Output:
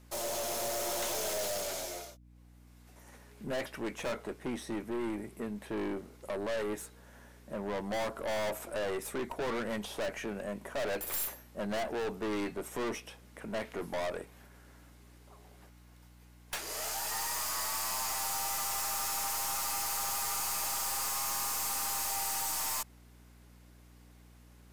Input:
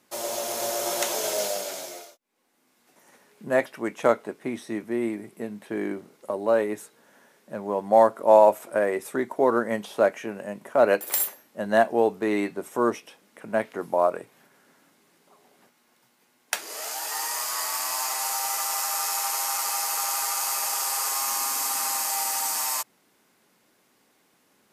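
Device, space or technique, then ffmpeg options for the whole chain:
valve amplifier with mains hum: -af "aeval=exprs='(tanh(39.8*val(0)+0.3)-tanh(0.3))/39.8':c=same,aeval=exprs='val(0)+0.00158*(sin(2*PI*60*n/s)+sin(2*PI*2*60*n/s)/2+sin(2*PI*3*60*n/s)/3+sin(2*PI*4*60*n/s)/4+sin(2*PI*5*60*n/s)/5)':c=same"

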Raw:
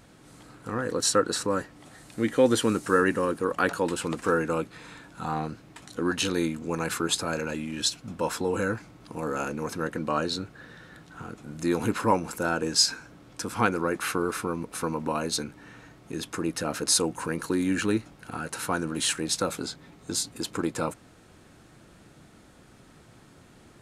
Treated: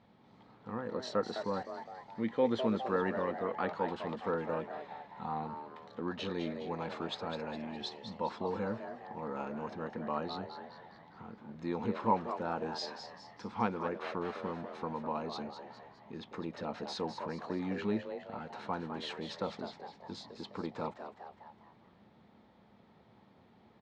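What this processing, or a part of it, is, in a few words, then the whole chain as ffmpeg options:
frequency-shifting delay pedal into a guitar cabinet: -filter_complex "[0:a]asplit=6[s0][s1][s2][s3][s4][s5];[s1]adelay=206,afreqshift=130,volume=0.376[s6];[s2]adelay=412,afreqshift=260,volume=0.18[s7];[s3]adelay=618,afreqshift=390,volume=0.0861[s8];[s4]adelay=824,afreqshift=520,volume=0.0417[s9];[s5]adelay=1030,afreqshift=650,volume=0.02[s10];[s0][s6][s7][s8][s9][s10]amix=inputs=6:normalize=0,highpass=83,equalizer=f=140:t=q:w=4:g=-5,equalizer=f=210:t=q:w=4:g=7,equalizer=f=300:t=q:w=4:g=-7,equalizer=f=870:t=q:w=4:g=7,equalizer=f=1500:t=q:w=4:g=-8,equalizer=f=2700:t=q:w=4:g=-6,lowpass=f=3800:w=0.5412,lowpass=f=3800:w=1.3066,volume=0.355"

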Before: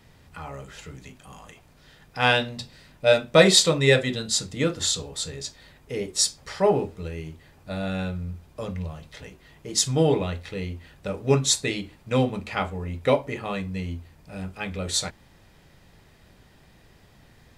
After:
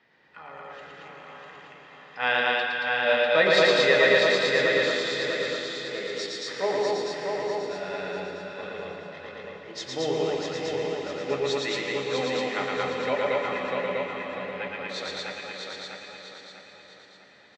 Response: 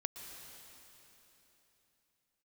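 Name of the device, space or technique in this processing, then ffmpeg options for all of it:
station announcement: -filter_complex "[0:a]highpass=330,lowpass=4500,lowpass=5100,lowpass=9600,equalizer=f=1800:t=o:w=0.53:g=7,aecho=1:1:113.7|227.4:0.794|0.891[s0];[1:a]atrim=start_sample=2205[s1];[s0][s1]afir=irnorm=-1:irlink=0,aecho=1:1:647|1294|1941|2588|3235:0.631|0.246|0.096|0.0374|0.0146,volume=0.596"

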